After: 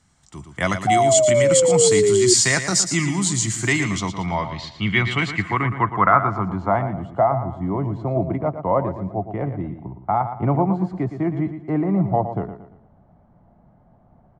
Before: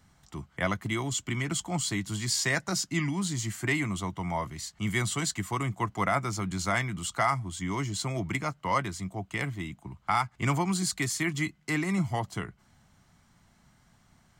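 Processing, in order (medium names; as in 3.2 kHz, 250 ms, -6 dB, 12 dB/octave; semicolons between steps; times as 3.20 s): 4.26–5.11 s: distance through air 110 m; on a send: feedback delay 115 ms, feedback 38%, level -10 dB; on the sum: level rider gain up to 8.5 dB; 0.87–2.34 s: painted sound fall 360–750 Hz -15 dBFS; low-pass sweep 8.1 kHz -> 650 Hz, 3.52–7.11 s; trim -1 dB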